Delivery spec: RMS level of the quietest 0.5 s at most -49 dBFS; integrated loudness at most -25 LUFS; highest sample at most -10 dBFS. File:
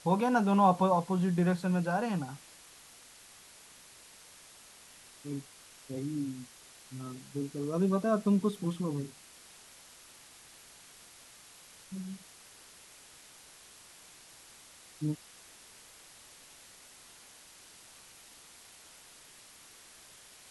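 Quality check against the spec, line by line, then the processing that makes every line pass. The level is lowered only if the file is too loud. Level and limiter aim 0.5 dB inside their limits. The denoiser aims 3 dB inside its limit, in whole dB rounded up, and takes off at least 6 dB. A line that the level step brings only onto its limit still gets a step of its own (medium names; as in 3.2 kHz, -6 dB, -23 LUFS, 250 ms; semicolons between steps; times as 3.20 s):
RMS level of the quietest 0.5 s -55 dBFS: pass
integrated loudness -31.5 LUFS: pass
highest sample -13.0 dBFS: pass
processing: none needed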